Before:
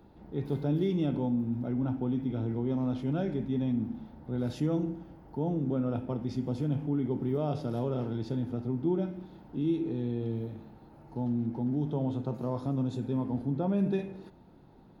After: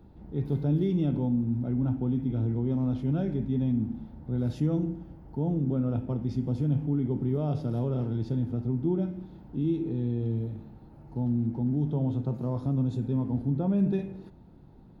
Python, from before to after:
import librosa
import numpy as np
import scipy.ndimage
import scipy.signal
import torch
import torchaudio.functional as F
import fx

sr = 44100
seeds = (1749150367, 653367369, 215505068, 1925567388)

y = fx.low_shelf(x, sr, hz=230.0, db=12.0)
y = F.gain(torch.from_numpy(y), -3.5).numpy()